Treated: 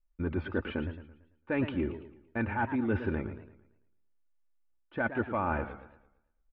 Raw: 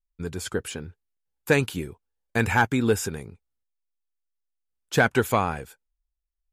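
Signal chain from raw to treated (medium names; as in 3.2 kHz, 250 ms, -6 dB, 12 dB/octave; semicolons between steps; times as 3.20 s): Bessel low-pass 1.6 kHz, order 8; comb 3.4 ms, depth 60%; reverse; compression 16:1, threshold -31 dBFS, peak gain reduction 17 dB; reverse; modulated delay 112 ms, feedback 41%, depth 161 cents, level -11 dB; trim +4 dB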